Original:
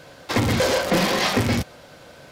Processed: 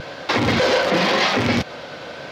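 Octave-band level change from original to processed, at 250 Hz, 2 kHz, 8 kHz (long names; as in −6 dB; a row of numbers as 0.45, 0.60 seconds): +1.5, +4.5, −4.0 decibels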